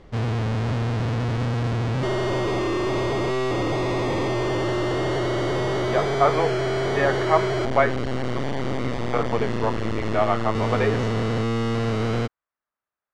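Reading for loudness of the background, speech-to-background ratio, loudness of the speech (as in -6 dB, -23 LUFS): -25.0 LUFS, 0.0 dB, -25.0 LUFS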